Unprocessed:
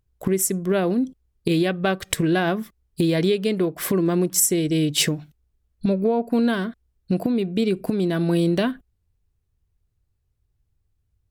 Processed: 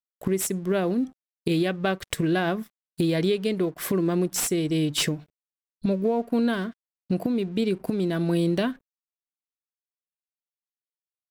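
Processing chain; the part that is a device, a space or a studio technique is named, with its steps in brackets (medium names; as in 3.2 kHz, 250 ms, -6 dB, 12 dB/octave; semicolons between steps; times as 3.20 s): early transistor amplifier (crossover distortion -49 dBFS; slew-rate limiter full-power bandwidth 690 Hz); trim -3 dB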